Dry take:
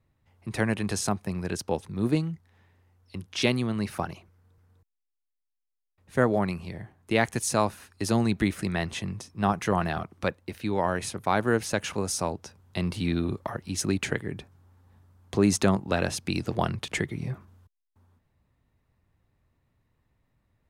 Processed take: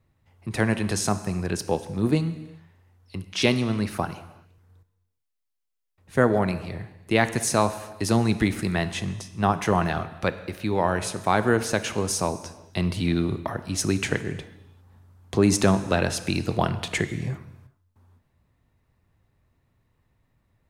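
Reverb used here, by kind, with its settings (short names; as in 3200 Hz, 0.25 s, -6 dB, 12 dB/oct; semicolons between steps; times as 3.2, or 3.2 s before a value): non-linear reverb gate 0.42 s falling, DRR 11 dB; gain +3 dB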